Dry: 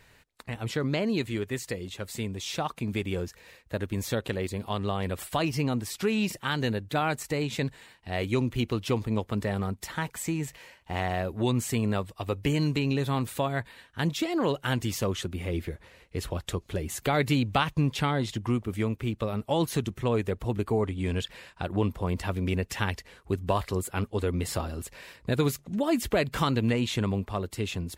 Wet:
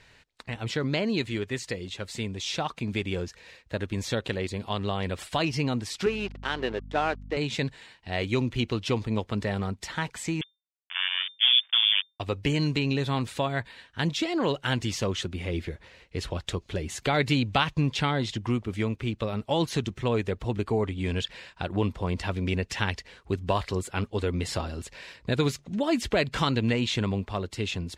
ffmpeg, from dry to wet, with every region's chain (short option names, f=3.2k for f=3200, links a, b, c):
-filter_complex "[0:a]asettb=1/sr,asplit=3[a][b][c];[a]atrim=end=6.064[d];[b]atrim=start=6.06:end=7.37,asetpts=PTS-STARTPTS,afade=t=in:d=0.004:c=qsin,afade=t=out:st=1.306:d=0.004:c=qsin,highpass=300,equalizer=f=390:t=q:w=4:g=7,equalizer=f=680:t=q:w=4:g=4,equalizer=f=2.2k:t=q:w=4:g=-5,lowpass=f=3.1k:w=0.5412,lowpass=f=3.1k:w=1.3066,aeval=exprs='sgn(val(0))*max(abs(val(0))-0.00841,0)':c=same,aeval=exprs='val(0)+0.00891*(sin(2*PI*50*n/s)+sin(2*PI*2*50*n/s)/2+sin(2*PI*3*50*n/s)/3+sin(2*PI*4*50*n/s)/4+sin(2*PI*5*50*n/s)/5)':c=same[e];[c]atrim=start=7.366[f];[d][e]acrossfade=d=0.004:c1=hsin:c2=qsin[g];[g][f]acrossfade=d=0.004:c1=qsin:c2=hsin,asettb=1/sr,asplit=3[h][i][j];[h]atrim=end=10.414[k];[i]atrim=start=10.41:end=12.2,asetpts=PTS-STARTPTS,afade=t=in:d=0.004:c=qsin,afade=t=out:st=1.786:d=0.004:c=qsin,acrusher=bits=3:mix=0:aa=0.5,lowpass=f=3.1k:t=q:w=0.5098,lowpass=f=3.1k:t=q:w=0.6013,lowpass=f=3.1k:t=q:w=0.9,lowpass=f=3.1k:t=q:w=2.563,afreqshift=-3600,highpass=1.4k[l];[j]atrim=start=12.196[m];[k][l]acrossfade=d=0.004:c1=hsin:c2=qsin[n];[n][m]acrossfade=d=0.004:c1=qsin:c2=hsin,lowpass=5k,highshelf=f=3k:g=8.5,bandreject=f=1.2k:w=23"